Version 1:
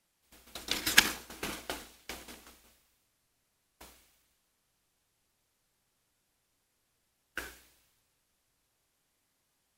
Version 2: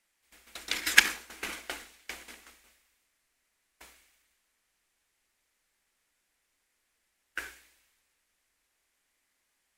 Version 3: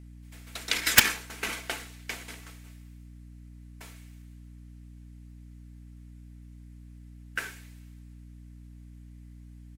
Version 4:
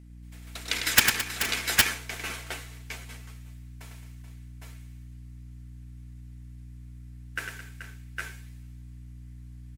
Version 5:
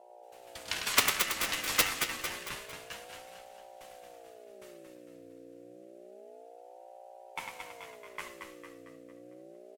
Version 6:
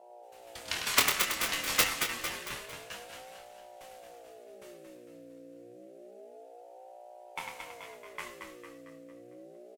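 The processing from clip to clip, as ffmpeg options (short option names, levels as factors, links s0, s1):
-af "equalizer=f=125:t=o:w=1:g=-12,equalizer=f=2000:t=o:w=1:g=9,equalizer=f=8000:t=o:w=1:g=4,volume=0.708"
-af "aecho=1:1:4.5:0.32,aeval=exprs='val(0)+0.00316*(sin(2*PI*60*n/s)+sin(2*PI*2*60*n/s)/2+sin(2*PI*3*60*n/s)/3+sin(2*PI*4*60*n/s)/4+sin(2*PI*5*60*n/s)/5)':c=same,aeval=exprs='(mod(2.51*val(0)+1,2)-1)/2.51':c=same,volume=1.58"
-af "aecho=1:1:101|217|431|467|808|819:0.501|0.224|0.282|0.126|0.668|0.562,volume=0.841"
-af "aecho=1:1:226|452|678|904|1130|1356:0.501|0.236|0.111|0.052|0.0245|0.0115,flanger=delay=9.8:depth=4.3:regen=55:speed=0.64:shape=sinusoidal,aeval=exprs='val(0)*sin(2*PI*530*n/s+530*0.25/0.28*sin(2*PI*0.28*n/s))':c=same,volume=1.19"
-filter_complex "[0:a]asplit=2[s0][s1];[s1]adelay=25,volume=0.447[s2];[s0][s2]amix=inputs=2:normalize=0"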